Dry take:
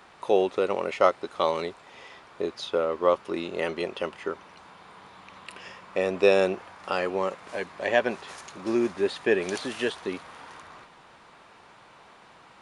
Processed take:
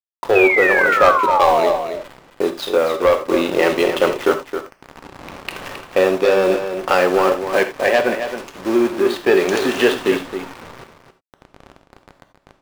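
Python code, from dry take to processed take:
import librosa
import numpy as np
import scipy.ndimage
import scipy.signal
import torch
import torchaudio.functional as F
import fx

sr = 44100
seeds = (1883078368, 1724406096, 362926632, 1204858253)

y = fx.delta_hold(x, sr, step_db=-37.5)
y = fx.highpass(y, sr, hz=210.0, slope=6)
y = fx.high_shelf(y, sr, hz=5500.0, db=-8.0)
y = fx.leveller(y, sr, passes=3)
y = fx.rider(y, sr, range_db=10, speed_s=0.5)
y = fx.spec_paint(y, sr, seeds[0], shape='fall', start_s=0.35, length_s=1.38, low_hz=580.0, high_hz=2600.0, level_db=-19.0)
y = y + 10.0 ** (-9.0 / 20.0) * np.pad(y, (int(268 * sr / 1000.0), 0))[:len(y)]
y = fx.rev_gated(y, sr, seeds[1], gate_ms=110, shape='flat', drr_db=7.5)
y = y * librosa.db_to_amplitude(1.5)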